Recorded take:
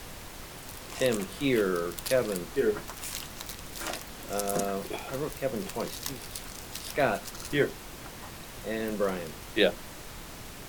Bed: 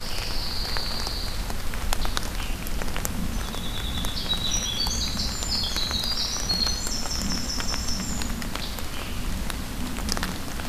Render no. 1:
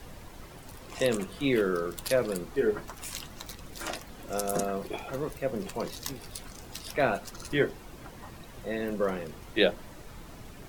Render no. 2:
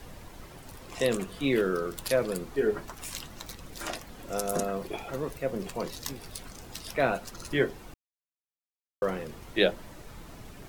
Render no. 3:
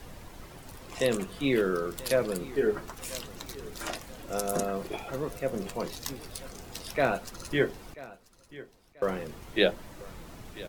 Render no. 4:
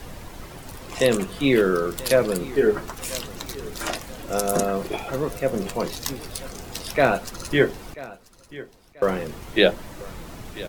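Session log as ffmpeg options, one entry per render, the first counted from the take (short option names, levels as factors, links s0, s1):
-af "afftdn=nr=9:nf=-44"
-filter_complex "[0:a]asplit=3[s0][s1][s2];[s0]atrim=end=7.94,asetpts=PTS-STARTPTS,afade=t=out:st=7.936:d=0.004:c=hsin[s3];[s1]atrim=start=7.94:end=9.02,asetpts=PTS-STARTPTS,volume=0[s4];[s2]atrim=start=9.02,asetpts=PTS-STARTPTS,afade=t=in:d=0.004:c=hsin[s5];[s3][s4][s5]concat=n=3:v=0:a=1"
-af "aecho=1:1:987|1974|2961:0.119|0.0404|0.0137"
-af "volume=2.37,alimiter=limit=0.708:level=0:latency=1"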